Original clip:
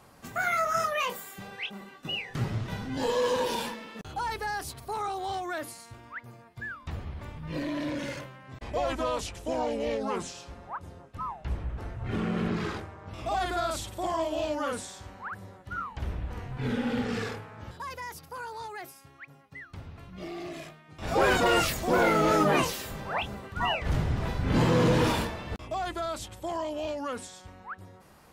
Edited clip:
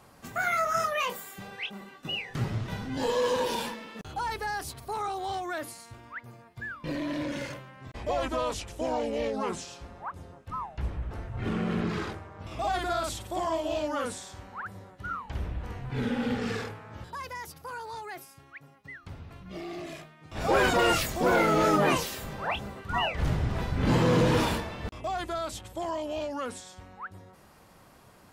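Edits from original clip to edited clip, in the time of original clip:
0:06.84–0:07.51: remove

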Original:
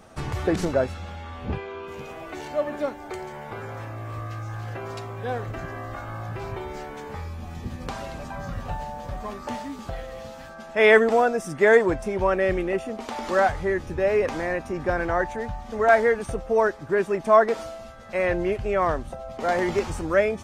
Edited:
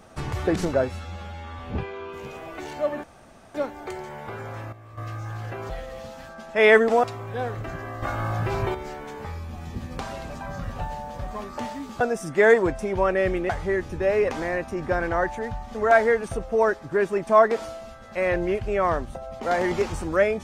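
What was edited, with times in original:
0:00.83–0:01.34: time-stretch 1.5×
0:02.78: splice in room tone 0.51 s
0:03.96–0:04.21: clip gain −11.5 dB
0:05.92–0:06.64: clip gain +7 dB
0:09.90–0:11.24: move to 0:04.93
0:12.73–0:13.47: remove

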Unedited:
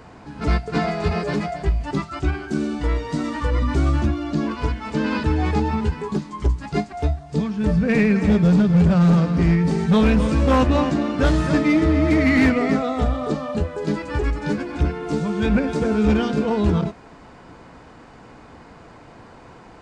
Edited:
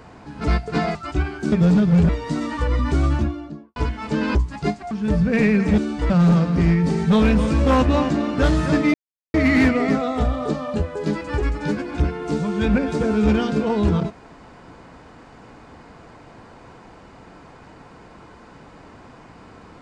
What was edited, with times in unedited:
0:00.95–0:02.03: remove
0:02.60–0:02.92: swap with 0:08.34–0:08.91
0:03.90–0:04.59: fade out and dull
0:05.18–0:06.45: remove
0:07.01–0:07.47: remove
0:11.75–0:12.15: silence

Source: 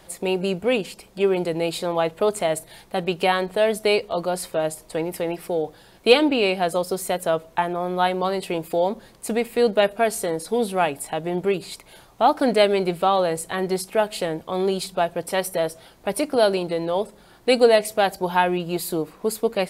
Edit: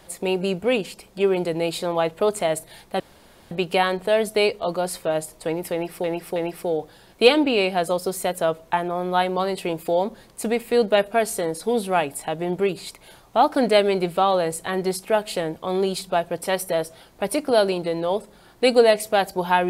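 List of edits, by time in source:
0:03.00: splice in room tone 0.51 s
0:05.21–0:05.53: repeat, 3 plays

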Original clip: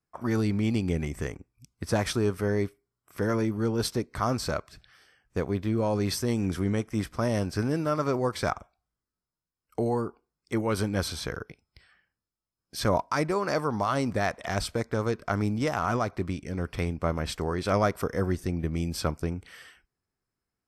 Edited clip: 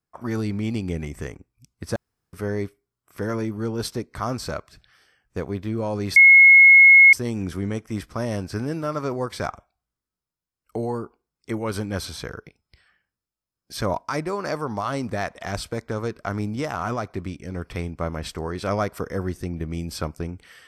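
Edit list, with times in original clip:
0:01.96–0:02.33: fill with room tone
0:06.16: insert tone 2,170 Hz −7 dBFS 0.97 s

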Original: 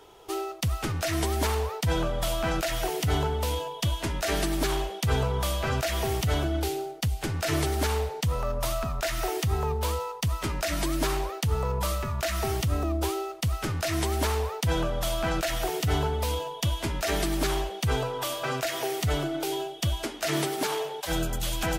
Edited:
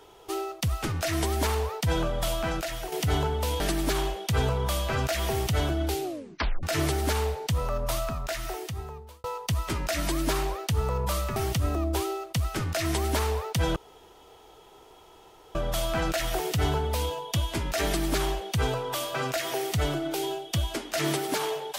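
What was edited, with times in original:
0:02.29–0:02.92: fade out, to −8 dB
0:03.60–0:04.34: remove
0:06.77: tape stop 0.60 s
0:08.67–0:09.98: fade out
0:12.10–0:12.44: remove
0:14.84: splice in room tone 1.79 s

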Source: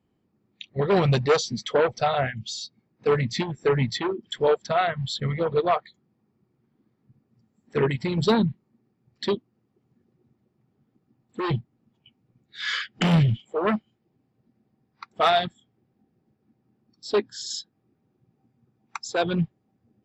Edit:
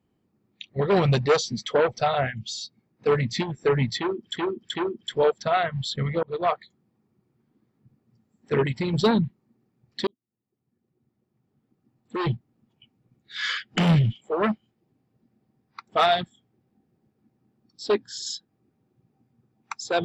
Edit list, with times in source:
0:03.99–0:04.37: repeat, 3 plays
0:05.47–0:05.75: fade in
0:09.31–0:11.42: fade in

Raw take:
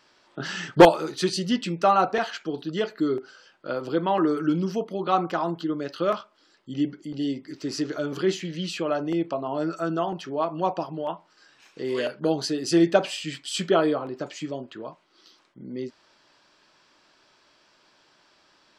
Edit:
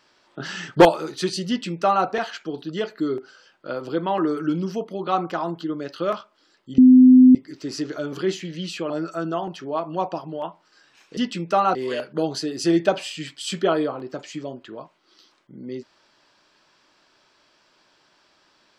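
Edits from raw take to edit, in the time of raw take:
0:01.48–0:02.06: duplicate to 0:11.82
0:06.78–0:07.35: beep over 255 Hz −6.5 dBFS
0:08.90–0:09.55: remove

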